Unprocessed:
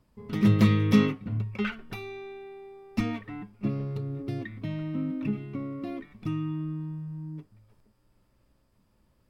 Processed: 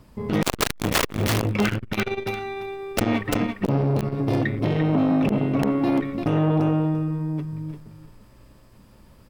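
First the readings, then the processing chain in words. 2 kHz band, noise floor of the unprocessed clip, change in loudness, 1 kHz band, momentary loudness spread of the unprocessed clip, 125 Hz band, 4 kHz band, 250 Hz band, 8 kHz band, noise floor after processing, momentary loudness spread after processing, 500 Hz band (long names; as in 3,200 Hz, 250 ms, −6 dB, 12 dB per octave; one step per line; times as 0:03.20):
+9.0 dB, −68 dBFS, +6.0 dB, +12.5 dB, 19 LU, +5.0 dB, +11.0 dB, +5.5 dB, can't be measured, −51 dBFS, 9 LU, +11.0 dB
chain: wrap-around overflow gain 19 dB
repeating echo 343 ms, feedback 15%, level −7.5 dB
boost into a limiter +24.5 dB
saturating transformer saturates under 380 Hz
level −9 dB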